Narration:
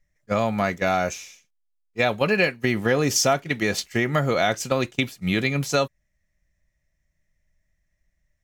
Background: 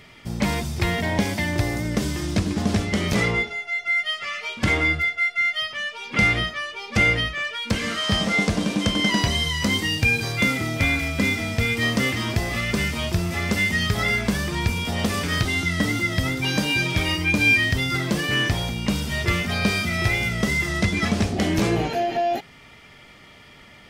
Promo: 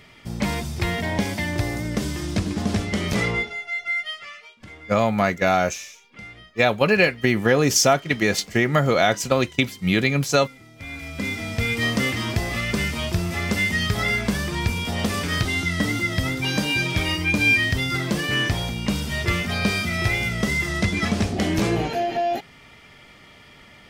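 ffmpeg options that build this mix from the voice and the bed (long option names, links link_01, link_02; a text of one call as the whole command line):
ffmpeg -i stem1.wav -i stem2.wav -filter_complex "[0:a]adelay=4600,volume=3dB[link_01];[1:a]volume=20dB,afade=type=out:start_time=3.81:duration=0.75:silence=0.0944061,afade=type=in:start_time=10.76:duration=0.98:silence=0.0841395[link_02];[link_01][link_02]amix=inputs=2:normalize=0" out.wav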